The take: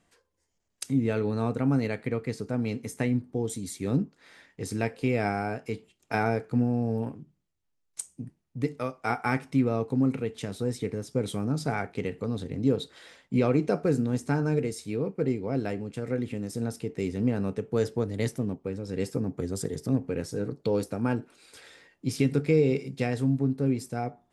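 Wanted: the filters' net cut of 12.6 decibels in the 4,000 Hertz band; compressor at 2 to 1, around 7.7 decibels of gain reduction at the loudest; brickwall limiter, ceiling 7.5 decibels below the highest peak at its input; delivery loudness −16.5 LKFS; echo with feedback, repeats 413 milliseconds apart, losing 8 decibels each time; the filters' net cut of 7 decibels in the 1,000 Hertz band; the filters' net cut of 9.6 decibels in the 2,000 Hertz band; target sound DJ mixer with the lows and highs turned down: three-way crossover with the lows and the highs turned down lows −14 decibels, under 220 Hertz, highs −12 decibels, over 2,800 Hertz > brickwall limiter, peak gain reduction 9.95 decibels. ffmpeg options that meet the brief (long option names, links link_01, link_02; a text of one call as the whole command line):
ffmpeg -i in.wav -filter_complex "[0:a]equalizer=frequency=1000:width_type=o:gain=-9,equalizer=frequency=2000:width_type=o:gain=-7,equalizer=frequency=4000:width_type=o:gain=-3.5,acompressor=threshold=-34dB:ratio=2,alimiter=level_in=2.5dB:limit=-24dB:level=0:latency=1,volume=-2.5dB,acrossover=split=220 2800:gain=0.2 1 0.251[link_01][link_02][link_03];[link_01][link_02][link_03]amix=inputs=3:normalize=0,aecho=1:1:413|826|1239|1652|2065:0.398|0.159|0.0637|0.0255|0.0102,volume=28.5dB,alimiter=limit=-7dB:level=0:latency=1" out.wav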